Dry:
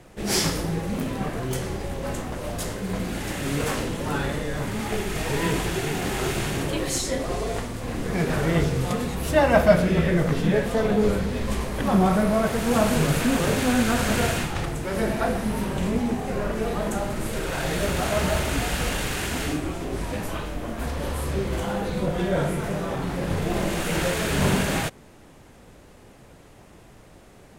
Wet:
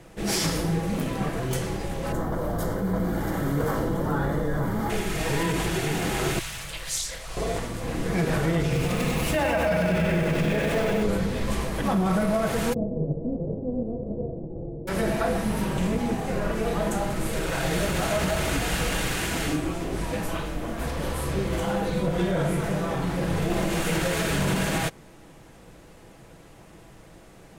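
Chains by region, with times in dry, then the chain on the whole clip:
0:02.12–0:04.90: flat-topped bell 4,600 Hz −12 dB 2.7 octaves + notch filter 2,600 Hz, Q 5.1 + envelope flattener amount 50%
0:06.39–0:07.37: guitar amp tone stack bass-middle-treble 10-0-10 + highs frequency-modulated by the lows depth 0.66 ms
0:08.63–0:11.03: parametric band 2,500 Hz +7.5 dB 0.49 octaves + feedback echo at a low word length 96 ms, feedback 80%, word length 7 bits, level −4 dB
0:12.72–0:14.87: spectral envelope flattened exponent 0.3 + Butterworth low-pass 540 Hz
whole clip: comb filter 6.1 ms, depth 33%; brickwall limiter −15.5 dBFS

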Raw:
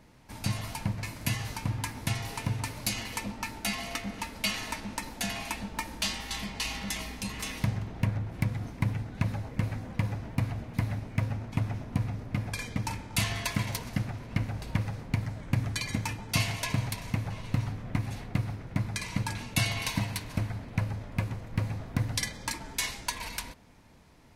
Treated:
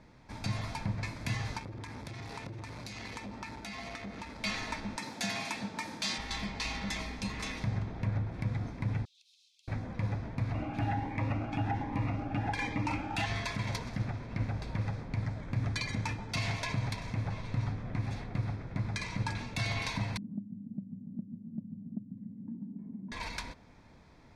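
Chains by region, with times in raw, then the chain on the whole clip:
0:01.58–0:04.42: high-pass filter 42 Hz 24 dB per octave + downward compressor 12 to 1, threshold −35 dBFS + saturating transformer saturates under 1,000 Hz
0:04.97–0:06.18: high-pass filter 110 Hz 24 dB per octave + high-shelf EQ 4,000 Hz +8 dB
0:09.05–0:09.68: Butterworth high-pass 2,900 Hz 72 dB per octave + downward compressor 10 to 1, threshold −57 dBFS
0:10.54–0:13.26: flat-topped bell 1,300 Hz +9 dB 2.7 octaves + hollow resonant body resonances 300/810/2,800 Hz, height 16 dB, ringing for 100 ms + phaser whose notches keep moving one way rising 1.3 Hz
0:20.17–0:23.12: flat-topped band-pass 210 Hz, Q 3.3 + repeating echo 143 ms, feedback 42%, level −7.5 dB + multiband upward and downward compressor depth 100%
whole clip: low-pass filter 5,100 Hz 12 dB per octave; notch filter 2,900 Hz, Q 6.8; brickwall limiter −23 dBFS

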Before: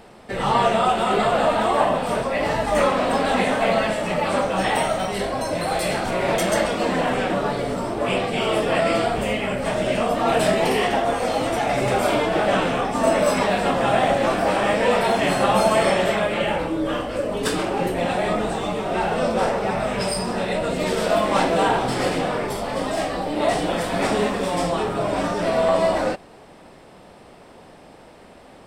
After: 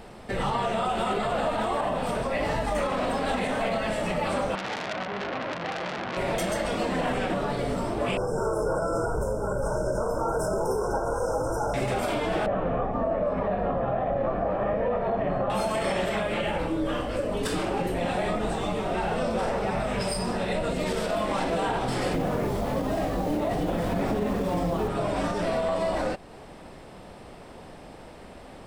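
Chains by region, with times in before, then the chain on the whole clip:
0:04.55–0:06.17: band-pass filter 160–2,300 Hz + tilt shelving filter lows +5.5 dB, about 1,100 Hz + saturating transformer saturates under 3,700 Hz
0:08.17–0:11.74: linear-phase brick-wall band-stop 1,600–5,100 Hz + comb filter 2.1 ms, depth 61%
0:12.46–0:15.50: low-pass filter 1,100 Hz + comb filter 1.7 ms, depth 32%
0:22.12–0:24.87: high-pass filter 120 Hz 6 dB per octave + spectral tilt −3 dB per octave + background noise pink −40 dBFS
whole clip: low-shelf EQ 98 Hz +9 dB; downward compressor 1.5 to 1, threshold −32 dBFS; brickwall limiter −18 dBFS

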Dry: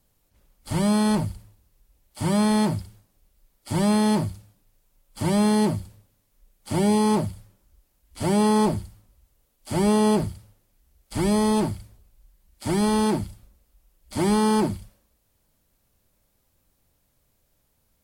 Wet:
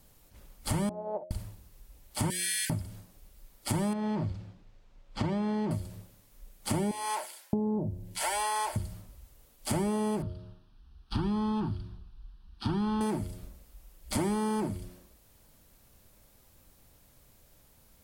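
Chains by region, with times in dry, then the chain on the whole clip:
0:00.89–0:01.31: flat-topped band-pass 600 Hz, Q 2.3 + expander for the loud parts 2.5 to 1, over −49 dBFS
0:02.30–0:02.70: linear-phase brick-wall high-pass 1,500 Hz + spectral tilt +2.5 dB per octave
0:03.93–0:05.71: downward compressor 2.5 to 1, threshold −25 dBFS + high-frequency loss of the air 170 metres
0:06.91–0:08.76: Butterworth band-reject 1,200 Hz, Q 6.1 + multiband delay without the direct sound highs, lows 620 ms, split 750 Hz
0:10.22–0:13.01: high-frequency loss of the air 120 metres + phaser with its sweep stopped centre 2,100 Hz, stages 6
whole clip: hum removal 89.45 Hz, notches 7; dynamic equaliser 4,300 Hz, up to −6 dB, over −49 dBFS, Q 1.5; downward compressor 8 to 1, threshold −36 dBFS; level +8 dB

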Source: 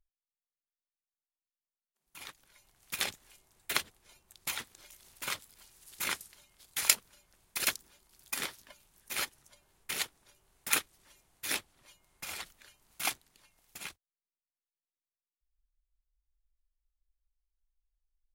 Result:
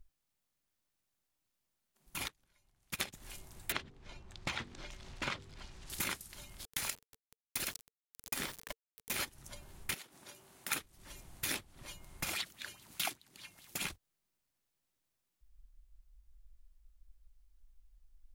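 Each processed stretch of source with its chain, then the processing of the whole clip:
0:02.28–0:03.13: high-shelf EQ 11,000 Hz −4.5 dB + expander for the loud parts 2.5 to 1, over −44 dBFS
0:03.72–0:05.90: high-frequency loss of the air 140 metres + hum removal 48.73 Hz, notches 10
0:06.65–0:09.20: downward compressor 3 to 1, threshold −36 dBFS + bit-depth reduction 8 bits, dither none
0:09.94–0:10.72: high-pass filter 210 Hz + downward compressor 10 to 1, threshold −48 dBFS
0:12.30–0:13.82: Bessel high-pass filter 160 Hz + parametric band 620 Hz −6.5 dB 2.4 octaves + auto-filter bell 4.9 Hz 320–4,000 Hz +12 dB
whole clip: low-shelf EQ 320 Hz +10.5 dB; notch filter 450 Hz, Q 12; downward compressor 6 to 1, threshold −45 dBFS; level +9.5 dB

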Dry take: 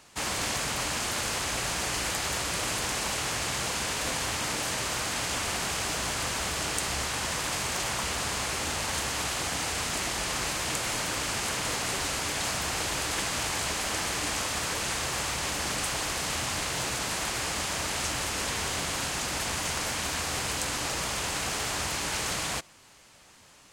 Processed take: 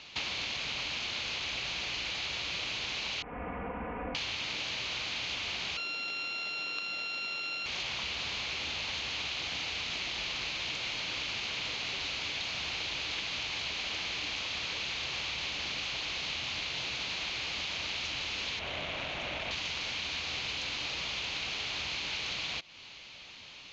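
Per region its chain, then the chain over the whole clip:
0:03.22–0:04.15: Gaussian smoothing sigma 6.8 samples + comb filter 4.1 ms, depth 80%
0:05.77–0:07.66: samples sorted by size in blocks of 32 samples + high-pass filter 250 Hz + double-tracking delay 20 ms −14 dB
0:18.59–0:19.51: running median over 9 samples + parametric band 620 Hz +9.5 dB 0.36 octaves
whole clip: Butterworth low-pass 6,600 Hz 72 dB per octave; flat-topped bell 3,100 Hz +12 dB 1.2 octaves; downward compressor, threshold −34 dBFS

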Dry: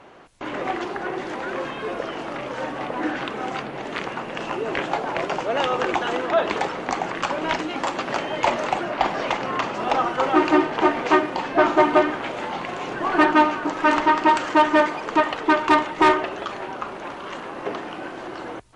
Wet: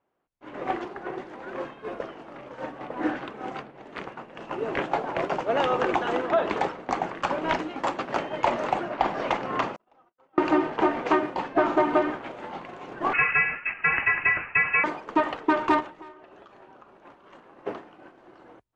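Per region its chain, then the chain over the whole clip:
0:09.76–0:10.38: noise gate −24 dBFS, range −42 dB + downward compressor 3 to 1, threshold −39 dBFS
0:13.13–0:14.84: high-frequency loss of the air 230 metres + voice inversion scrambler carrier 2,900 Hz
0:15.80–0:17.03: notch filter 2,100 Hz, Q 22 + downward compressor 12 to 1, threshold −28 dBFS
whole clip: downward expander −20 dBFS; high-shelf EQ 2,500 Hz −9 dB; downward compressor 3 to 1, threshold −24 dBFS; level +3.5 dB

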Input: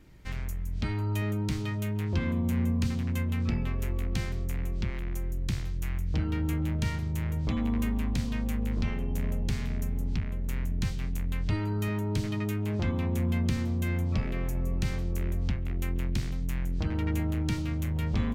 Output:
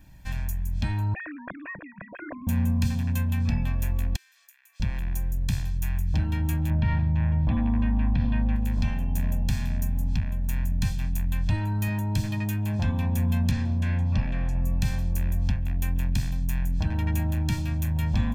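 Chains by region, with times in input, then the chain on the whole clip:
0:01.14–0:02.47: three sine waves on the formant tracks + phaser with its sweep stopped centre 840 Hz, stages 6
0:04.16–0:04.80: high-pass filter 1,400 Hz 24 dB per octave + downward compressor, threshold −58 dBFS
0:06.70–0:08.56: Gaussian smoothing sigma 3 samples + envelope flattener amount 70%
0:13.51–0:14.62: low-pass filter 4,900 Hz + highs frequency-modulated by the lows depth 0.28 ms
whole clip: high-shelf EQ 11,000 Hz +10 dB; notch filter 360 Hz, Q 12; comb filter 1.2 ms, depth 77%

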